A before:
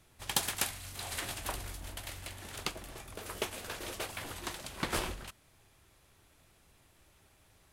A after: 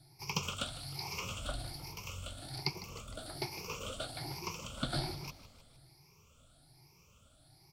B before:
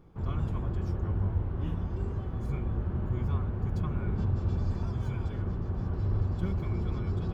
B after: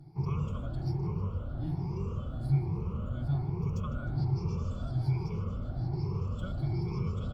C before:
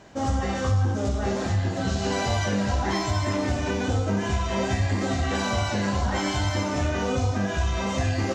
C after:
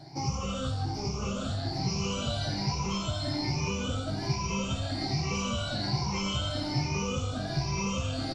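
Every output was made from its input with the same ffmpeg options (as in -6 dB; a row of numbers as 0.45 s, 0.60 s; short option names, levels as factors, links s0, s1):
-filter_complex "[0:a]afftfilt=real='re*pow(10,19/40*sin(2*PI*(0.79*log(max(b,1)*sr/1024/100)/log(2)-(1.2)*(pts-256)/sr)))':imag='im*pow(10,19/40*sin(2*PI*(0.79*log(max(b,1)*sr/1024/100)/log(2)-(1.2)*(pts-256)/sr)))':win_size=1024:overlap=0.75,acrossover=split=4700[s0][s1];[s1]acompressor=threshold=0.00562:ratio=4:attack=1:release=60[s2];[s0][s2]amix=inputs=2:normalize=0,superequalizer=11b=0.251:14b=2.51,acrossover=split=320|870|1900[s3][s4][s5][s6];[s3]acompressor=threshold=0.0316:ratio=4[s7];[s4]acompressor=threshold=0.0126:ratio=4[s8];[s5]acompressor=threshold=0.0126:ratio=4[s9];[s7][s8][s9][s6]amix=inputs=4:normalize=0,equalizer=f=140:w=3.3:g=14.5,asplit=6[s10][s11][s12][s13][s14][s15];[s11]adelay=154,afreqshift=-46,volume=0.158[s16];[s12]adelay=308,afreqshift=-92,volume=0.0902[s17];[s13]adelay=462,afreqshift=-138,volume=0.0513[s18];[s14]adelay=616,afreqshift=-184,volume=0.0295[s19];[s15]adelay=770,afreqshift=-230,volume=0.0168[s20];[s10][s16][s17][s18][s19][s20]amix=inputs=6:normalize=0,volume=0.562"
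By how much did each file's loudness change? -2.5 LU, -1.5 LU, -5.5 LU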